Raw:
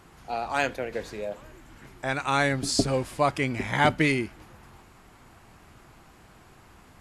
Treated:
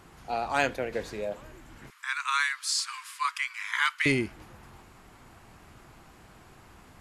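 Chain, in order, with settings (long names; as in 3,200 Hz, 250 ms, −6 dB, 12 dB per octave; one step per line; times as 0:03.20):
0:01.90–0:04.06: Butterworth high-pass 1,000 Hz 96 dB per octave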